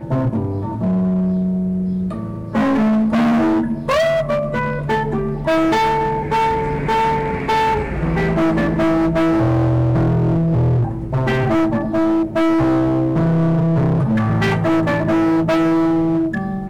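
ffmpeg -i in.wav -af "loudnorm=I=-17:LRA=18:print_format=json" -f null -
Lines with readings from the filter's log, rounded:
"input_i" : "-17.4",
"input_tp" : "-13.0",
"input_lra" : "1.5",
"input_thresh" : "-27.4",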